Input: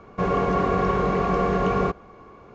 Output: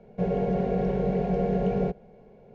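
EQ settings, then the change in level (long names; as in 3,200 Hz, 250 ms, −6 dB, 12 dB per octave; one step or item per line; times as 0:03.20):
high-frequency loss of the air 82 metres
tilt shelving filter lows +5 dB, about 1,100 Hz
phaser with its sweep stopped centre 310 Hz, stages 6
−4.5 dB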